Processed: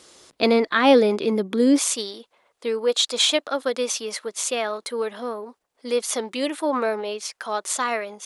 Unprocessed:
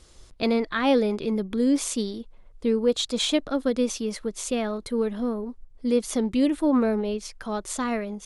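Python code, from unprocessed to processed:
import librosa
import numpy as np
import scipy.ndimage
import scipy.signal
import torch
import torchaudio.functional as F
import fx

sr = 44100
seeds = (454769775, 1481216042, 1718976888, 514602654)

y = fx.highpass(x, sr, hz=fx.steps((0.0, 270.0), (1.79, 630.0)), slope=12)
y = y * librosa.db_to_amplitude(7.0)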